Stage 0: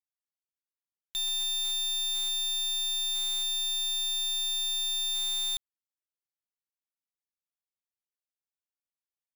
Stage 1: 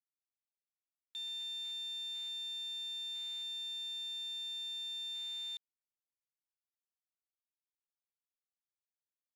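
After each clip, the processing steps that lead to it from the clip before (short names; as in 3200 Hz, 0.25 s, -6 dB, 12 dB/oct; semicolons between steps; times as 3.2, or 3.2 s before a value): Wiener smoothing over 25 samples; band-pass 2600 Hz, Q 2.1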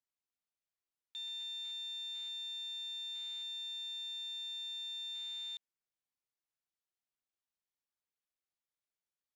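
high shelf 9700 Hz -10.5 dB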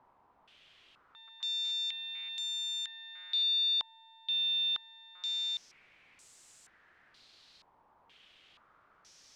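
zero-crossing step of -56.5 dBFS; stepped low-pass 2.1 Hz 950–7700 Hz; gain +4 dB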